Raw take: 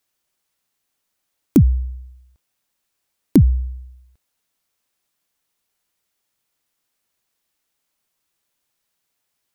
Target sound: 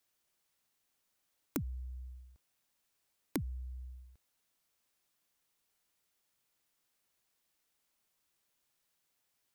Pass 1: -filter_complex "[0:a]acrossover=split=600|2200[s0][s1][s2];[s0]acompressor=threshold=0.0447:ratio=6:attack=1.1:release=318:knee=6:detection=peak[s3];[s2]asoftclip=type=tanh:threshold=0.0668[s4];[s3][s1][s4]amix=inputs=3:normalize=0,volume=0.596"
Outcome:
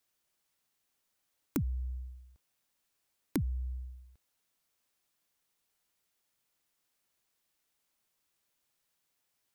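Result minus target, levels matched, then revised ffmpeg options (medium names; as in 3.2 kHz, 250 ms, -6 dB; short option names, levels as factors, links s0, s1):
compression: peak gain reduction -6.5 dB
-filter_complex "[0:a]acrossover=split=600|2200[s0][s1][s2];[s0]acompressor=threshold=0.0178:ratio=6:attack=1.1:release=318:knee=6:detection=peak[s3];[s2]asoftclip=type=tanh:threshold=0.0668[s4];[s3][s1][s4]amix=inputs=3:normalize=0,volume=0.596"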